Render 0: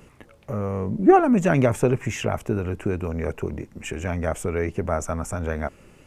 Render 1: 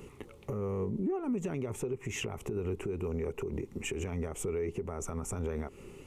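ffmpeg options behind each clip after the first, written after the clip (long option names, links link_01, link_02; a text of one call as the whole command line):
ffmpeg -i in.wav -af "equalizer=frequency=400:width_type=o:width=0.33:gain=10,equalizer=frequency=630:width_type=o:width=0.33:gain=-9,equalizer=frequency=1600:width_type=o:width=0.33:gain=-11,equalizer=frequency=5000:width_type=o:width=0.33:gain=-4,acompressor=threshold=-24dB:ratio=10,alimiter=level_in=2dB:limit=-24dB:level=0:latency=1:release=131,volume=-2dB" out.wav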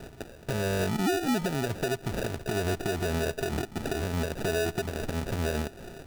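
ffmpeg -i in.wav -af "acrusher=samples=41:mix=1:aa=0.000001,volume=5.5dB" out.wav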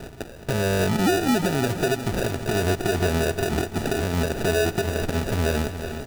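ffmpeg -i in.wav -af "aecho=1:1:358|716|1074|1432|1790|2148:0.299|0.167|0.0936|0.0524|0.0294|0.0164,volume=6dB" out.wav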